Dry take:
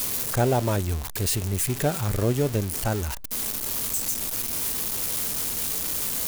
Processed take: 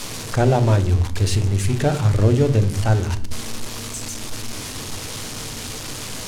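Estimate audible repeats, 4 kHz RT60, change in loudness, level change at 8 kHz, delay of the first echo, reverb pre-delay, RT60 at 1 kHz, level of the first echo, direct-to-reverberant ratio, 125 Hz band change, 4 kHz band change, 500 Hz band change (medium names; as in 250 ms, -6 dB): no echo, 0.40 s, +3.5 dB, -3.0 dB, no echo, 6 ms, 0.55 s, no echo, 9.0 dB, +9.5 dB, +3.0 dB, +4.5 dB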